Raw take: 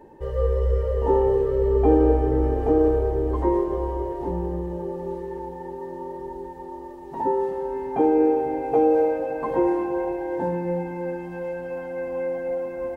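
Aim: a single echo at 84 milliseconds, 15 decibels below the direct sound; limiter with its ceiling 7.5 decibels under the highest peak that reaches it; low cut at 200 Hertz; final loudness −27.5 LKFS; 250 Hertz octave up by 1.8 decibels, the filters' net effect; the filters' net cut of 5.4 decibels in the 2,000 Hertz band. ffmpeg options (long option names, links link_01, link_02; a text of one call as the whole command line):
ffmpeg -i in.wav -af "highpass=200,equalizer=frequency=250:width_type=o:gain=4,equalizer=frequency=2000:width_type=o:gain=-7.5,alimiter=limit=-13.5dB:level=0:latency=1,aecho=1:1:84:0.178,volume=-2.5dB" out.wav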